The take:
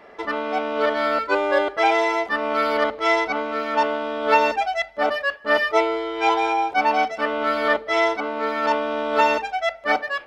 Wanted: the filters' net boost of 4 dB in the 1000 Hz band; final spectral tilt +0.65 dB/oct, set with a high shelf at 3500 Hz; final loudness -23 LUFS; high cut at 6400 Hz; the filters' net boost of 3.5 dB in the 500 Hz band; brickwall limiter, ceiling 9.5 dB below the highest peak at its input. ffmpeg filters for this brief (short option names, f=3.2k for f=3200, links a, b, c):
-af "lowpass=6.4k,equalizer=f=500:t=o:g=3,equalizer=f=1k:t=o:g=3.5,highshelf=f=3.5k:g=7.5,volume=-2.5dB,alimiter=limit=-13dB:level=0:latency=1"